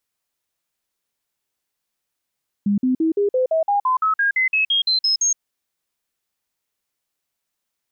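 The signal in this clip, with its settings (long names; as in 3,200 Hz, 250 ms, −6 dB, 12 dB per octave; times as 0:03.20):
stepped sweep 203 Hz up, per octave 3, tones 16, 0.12 s, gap 0.05 s −15 dBFS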